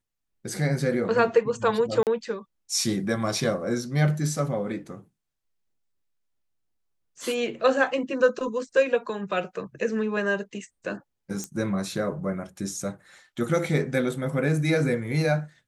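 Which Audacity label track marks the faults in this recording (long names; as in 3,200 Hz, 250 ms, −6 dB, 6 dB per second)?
2.030000	2.070000	drop-out 38 ms
11.440000	11.440000	click −19 dBFS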